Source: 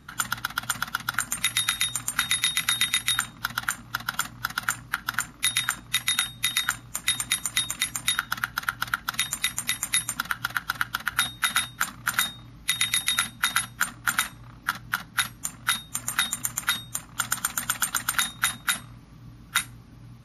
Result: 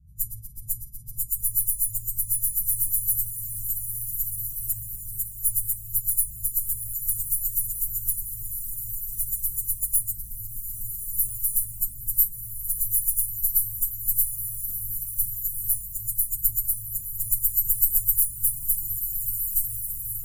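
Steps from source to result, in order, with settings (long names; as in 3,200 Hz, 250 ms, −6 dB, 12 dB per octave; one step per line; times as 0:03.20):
every partial snapped to a pitch grid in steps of 3 semitones
low-pass that shuts in the quiet parts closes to 2,300 Hz, open at −14 dBFS
asymmetric clip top −24.5 dBFS
inverse Chebyshev band-stop filter 550–2,900 Hz, stop band 80 dB
on a send: feedback delay with all-pass diffusion 1,465 ms, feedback 40%, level −6 dB
on the sum: level +7 dB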